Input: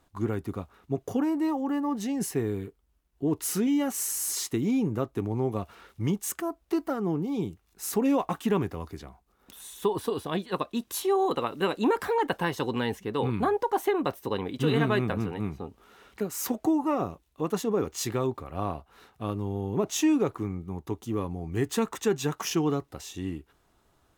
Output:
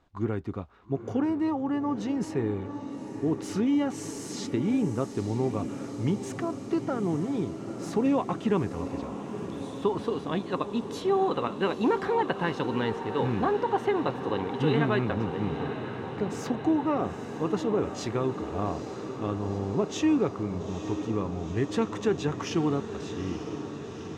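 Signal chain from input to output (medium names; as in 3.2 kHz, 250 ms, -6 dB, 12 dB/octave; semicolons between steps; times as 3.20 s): distance through air 120 m; echo that smears into a reverb 885 ms, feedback 74%, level -10 dB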